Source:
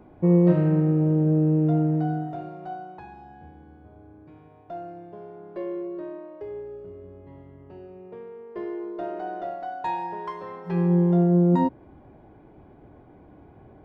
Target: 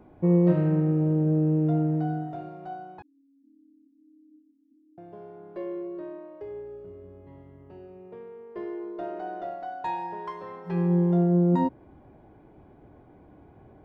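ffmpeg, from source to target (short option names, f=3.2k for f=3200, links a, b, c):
-filter_complex "[0:a]asettb=1/sr,asplit=3[a][b][c];[a]atrim=end=3.024[d];[b]atrim=start=3.02:end=4.98,asetpts=PTS-STARTPTS,afade=t=in:d=0.004:c=qsin,afade=t=out:st=1.956:d=0.004:c=qsin,asuperpass=centerf=270:order=12:qfactor=3.7[e];[c]atrim=start=4.976[f];[d][e]acrossfade=d=0.004:c1=hsin:c2=qsin[g];[g][f]acrossfade=d=0.004:c1=qsin:c2=hsin,volume=-2.5dB"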